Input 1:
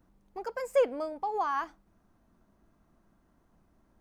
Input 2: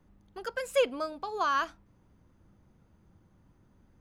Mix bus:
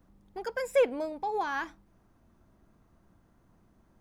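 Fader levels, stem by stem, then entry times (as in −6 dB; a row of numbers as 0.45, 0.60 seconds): +1.0, −5.5 decibels; 0.00, 0.00 seconds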